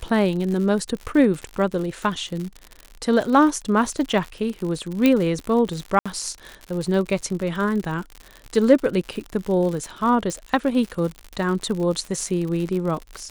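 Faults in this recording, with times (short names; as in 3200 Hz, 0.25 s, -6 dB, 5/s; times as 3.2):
crackle 89/s -28 dBFS
5.06 pop -5 dBFS
5.99–6.06 gap 66 ms
10.3 pop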